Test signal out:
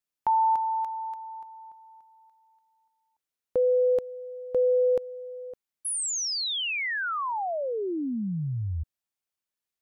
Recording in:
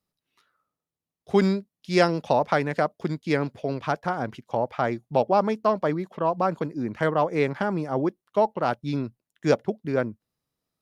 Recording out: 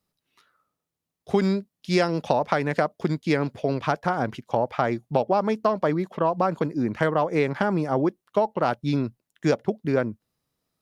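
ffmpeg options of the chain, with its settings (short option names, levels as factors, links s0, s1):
-af "acompressor=threshold=0.0794:ratio=6,volume=1.68"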